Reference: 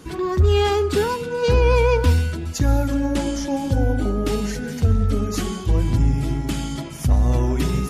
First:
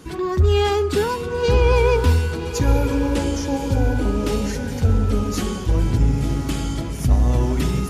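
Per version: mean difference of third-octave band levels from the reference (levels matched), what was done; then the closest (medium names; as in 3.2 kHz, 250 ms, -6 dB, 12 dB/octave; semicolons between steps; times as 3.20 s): 2.5 dB: echo that smears into a reverb 1040 ms, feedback 53%, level -10 dB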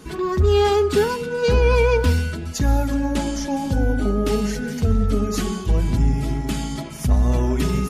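1.5 dB: comb 4.7 ms, depth 37%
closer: second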